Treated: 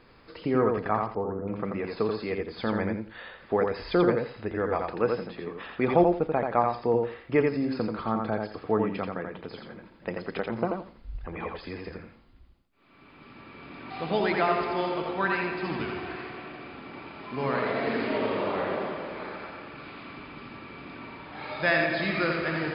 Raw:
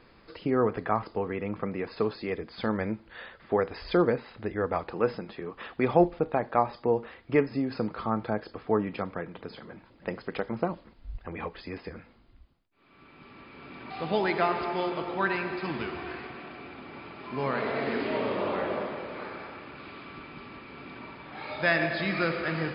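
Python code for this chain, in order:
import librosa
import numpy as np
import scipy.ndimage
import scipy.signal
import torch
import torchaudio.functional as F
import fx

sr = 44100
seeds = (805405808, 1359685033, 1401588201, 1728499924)

p1 = fx.ellip_lowpass(x, sr, hz=1400.0, order=4, stop_db=40, at=(1.06, 1.48))
y = p1 + fx.echo_feedback(p1, sr, ms=85, feedback_pct=19, wet_db=-4, dry=0)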